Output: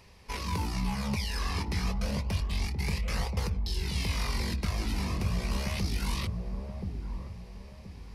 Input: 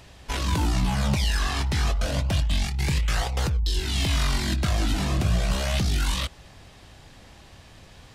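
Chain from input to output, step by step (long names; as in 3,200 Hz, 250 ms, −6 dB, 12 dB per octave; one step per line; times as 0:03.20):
EQ curve with evenly spaced ripples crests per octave 0.86, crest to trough 8 dB
delay with a low-pass on its return 1,026 ms, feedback 32%, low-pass 650 Hz, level −3.5 dB
level −8 dB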